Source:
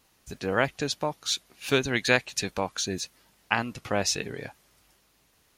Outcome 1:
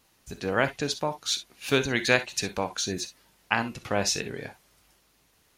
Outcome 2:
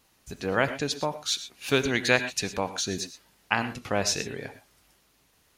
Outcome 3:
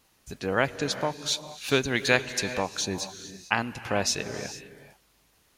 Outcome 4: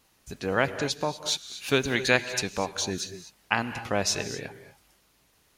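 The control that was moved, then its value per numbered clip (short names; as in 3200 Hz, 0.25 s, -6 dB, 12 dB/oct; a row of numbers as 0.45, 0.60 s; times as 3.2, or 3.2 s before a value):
non-linear reverb, gate: 80, 140, 480, 270 ms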